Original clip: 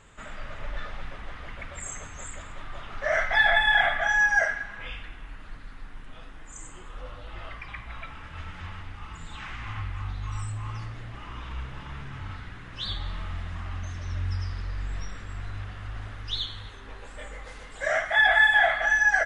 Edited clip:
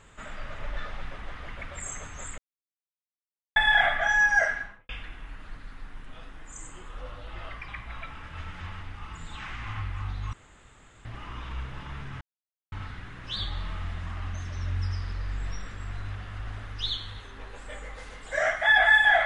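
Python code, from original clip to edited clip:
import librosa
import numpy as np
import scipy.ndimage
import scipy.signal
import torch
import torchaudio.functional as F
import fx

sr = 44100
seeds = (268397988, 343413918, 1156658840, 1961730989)

y = fx.studio_fade_out(x, sr, start_s=4.57, length_s=0.32)
y = fx.edit(y, sr, fx.silence(start_s=2.38, length_s=1.18),
    fx.room_tone_fill(start_s=10.33, length_s=0.72),
    fx.insert_silence(at_s=12.21, length_s=0.51), tone=tone)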